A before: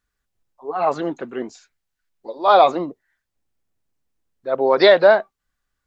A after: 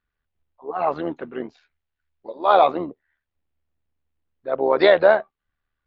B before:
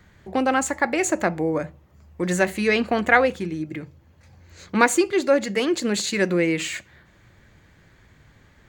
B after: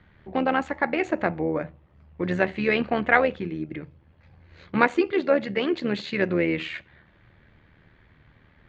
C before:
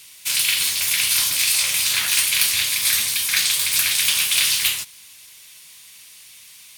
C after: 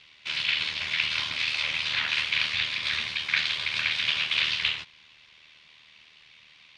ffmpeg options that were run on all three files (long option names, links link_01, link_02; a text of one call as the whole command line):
ffmpeg -i in.wav -af "lowpass=frequency=3600:width=0.5412,lowpass=frequency=3600:width=1.3066,tremolo=f=77:d=0.571" out.wav